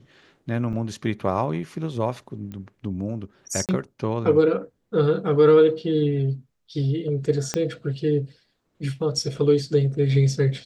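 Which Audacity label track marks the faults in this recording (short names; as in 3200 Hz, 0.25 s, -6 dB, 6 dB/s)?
0.730000	0.730000	gap 4.3 ms
2.520000	2.520000	pop -25 dBFS
3.660000	3.690000	gap 28 ms
7.540000	7.540000	pop -10 dBFS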